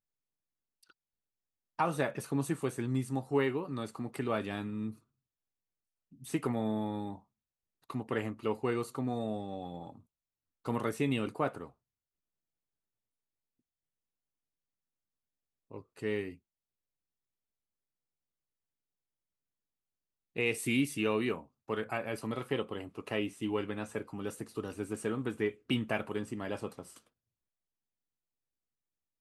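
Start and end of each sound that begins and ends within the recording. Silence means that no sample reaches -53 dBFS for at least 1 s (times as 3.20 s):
6.12–11.71 s
15.71–16.36 s
20.36–26.99 s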